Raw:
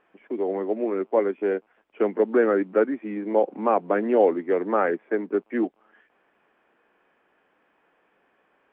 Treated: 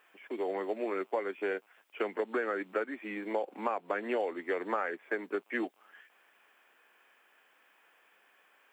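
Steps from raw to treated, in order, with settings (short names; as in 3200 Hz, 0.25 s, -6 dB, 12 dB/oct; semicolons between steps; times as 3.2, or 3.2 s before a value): tilt +5 dB/oct; compressor 12:1, threshold -27 dBFS, peak gain reduction 11 dB; gain -1 dB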